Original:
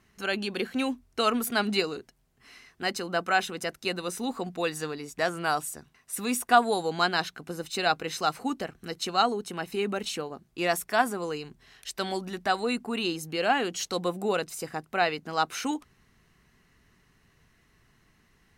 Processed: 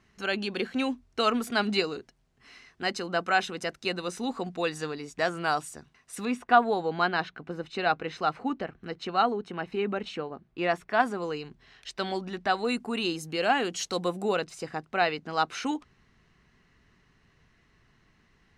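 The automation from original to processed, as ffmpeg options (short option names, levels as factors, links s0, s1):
-af "asetnsamples=n=441:p=0,asendcmd='6.25 lowpass f 2700;11 lowpass f 4700;12.65 lowpass f 9500;14.34 lowpass f 5400',lowpass=6700"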